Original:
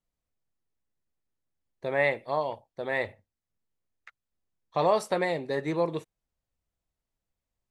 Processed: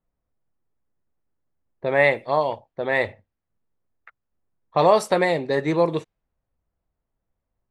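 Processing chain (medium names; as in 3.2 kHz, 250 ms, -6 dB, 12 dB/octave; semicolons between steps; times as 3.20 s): level-controlled noise filter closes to 1.4 kHz, open at -23.5 dBFS; trim +7.5 dB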